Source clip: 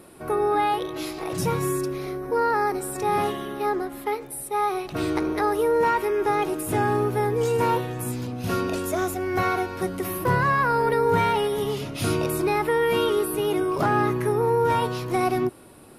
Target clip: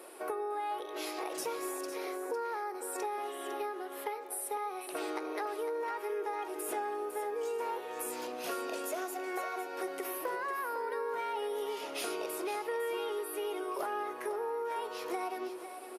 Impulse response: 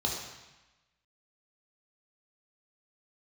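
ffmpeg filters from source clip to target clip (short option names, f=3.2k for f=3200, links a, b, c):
-filter_complex "[0:a]highpass=f=380:w=0.5412,highpass=f=380:w=1.3066,asplit=2[a][b];[1:a]atrim=start_sample=2205[c];[b][c]afir=irnorm=-1:irlink=0,volume=-22dB[d];[a][d]amix=inputs=2:normalize=0,acompressor=threshold=-35dB:ratio=6,aecho=1:1:504:0.316"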